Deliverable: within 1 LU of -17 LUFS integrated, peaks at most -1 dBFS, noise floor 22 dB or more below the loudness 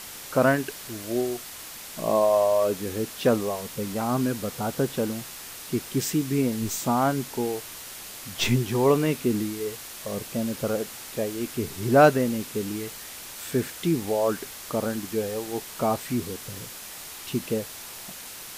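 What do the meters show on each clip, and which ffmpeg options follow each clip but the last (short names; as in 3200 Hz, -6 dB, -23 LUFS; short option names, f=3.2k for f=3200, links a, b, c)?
noise floor -41 dBFS; noise floor target -49 dBFS; loudness -26.5 LUFS; peak -5.5 dBFS; loudness target -17.0 LUFS
-> -af "afftdn=nr=8:nf=-41"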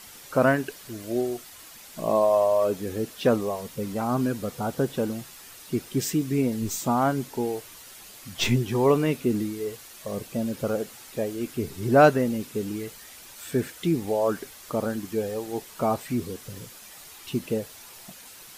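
noise floor -46 dBFS; noise floor target -49 dBFS
-> -af "afftdn=nr=6:nf=-46"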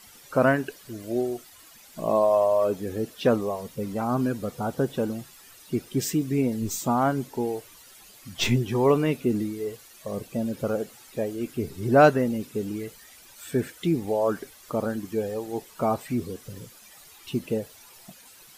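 noise floor -51 dBFS; loudness -26.5 LUFS; peak -5.5 dBFS; loudness target -17.0 LUFS
-> -af "volume=9.5dB,alimiter=limit=-1dB:level=0:latency=1"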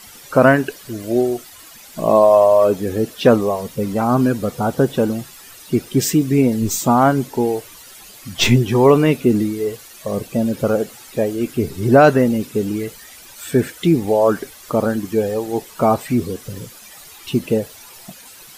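loudness -17.5 LUFS; peak -1.0 dBFS; noise floor -41 dBFS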